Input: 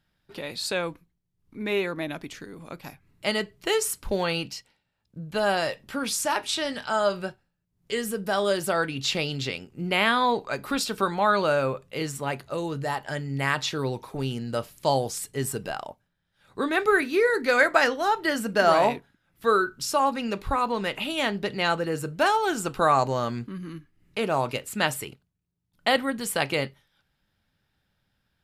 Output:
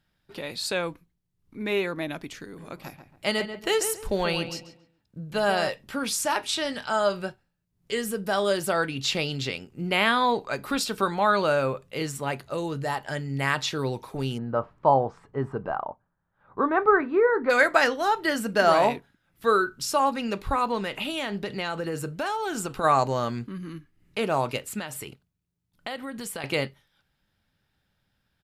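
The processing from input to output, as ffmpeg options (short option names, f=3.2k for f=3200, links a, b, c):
-filter_complex "[0:a]asplit=3[a][b][c];[a]afade=t=out:st=2.57:d=0.02[d];[b]asplit=2[e][f];[f]adelay=138,lowpass=f=2k:p=1,volume=-8.5dB,asplit=2[g][h];[h]adelay=138,lowpass=f=2k:p=1,volume=0.32,asplit=2[i][j];[j]adelay=138,lowpass=f=2k:p=1,volume=0.32,asplit=2[k][l];[l]adelay=138,lowpass=f=2k:p=1,volume=0.32[m];[e][g][i][k][m]amix=inputs=5:normalize=0,afade=t=in:st=2.57:d=0.02,afade=t=out:st=5.68:d=0.02[n];[c]afade=t=in:st=5.68:d=0.02[o];[d][n][o]amix=inputs=3:normalize=0,asplit=3[p][q][r];[p]afade=t=out:st=14.37:d=0.02[s];[q]lowpass=f=1.1k:t=q:w=2.4,afade=t=in:st=14.37:d=0.02,afade=t=out:st=17.49:d=0.02[t];[r]afade=t=in:st=17.49:d=0.02[u];[s][t][u]amix=inputs=3:normalize=0,asplit=3[v][w][x];[v]afade=t=out:st=20.8:d=0.02[y];[w]acompressor=threshold=-25dB:ratio=6:attack=3.2:release=140:knee=1:detection=peak,afade=t=in:st=20.8:d=0.02,afade=t=out:st=22.83:d=0.02[z];[x]afade=t=in:st=22.83:d=0.02[aa];[y][z][aa]amix=inputs=3:normalize=0,asettb=1/sr,asplit=3[ab][ac][ad];[ab]atrim=end=24.794[ae];[ac]atrim=start=24.79:end=26.44,asetpts=PTS-STARTPTS,afade=t=in:d=0.004:c=qsin,afade=t=out:st=1.646:d=0.004:c=qsin,acompressor=threshold=-32dB:ratio=4:attack=3.2:release=140:knee=1:detection=peak[af];[ad]atrim=start=26.436[ag];[ae][af]acrossfade=d=0.004:c1=hsin:c2=qsin[ah];[ah][ag]acrossfade=d=0.004:c1=qsin:c2=hsin"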